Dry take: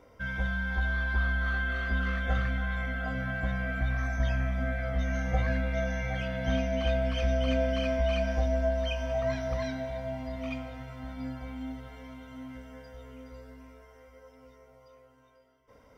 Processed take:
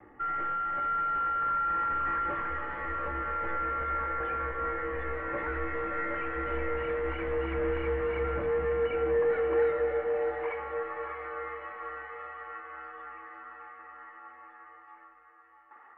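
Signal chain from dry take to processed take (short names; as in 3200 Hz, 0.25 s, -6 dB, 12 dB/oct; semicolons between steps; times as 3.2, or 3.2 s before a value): gate with hold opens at -48 dBFS; tilt +3.5 dB/oct; hard clip -35 dBFS, distortion -8 dB; high-pass sweep 150 Hz -> 1300 Hz, 7.32–11.01; mistuned SSB -190 Hz 190–2200 Hz; diffused feedback echo 0.622 s, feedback 53%, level -8 dB; gain +5.5 dB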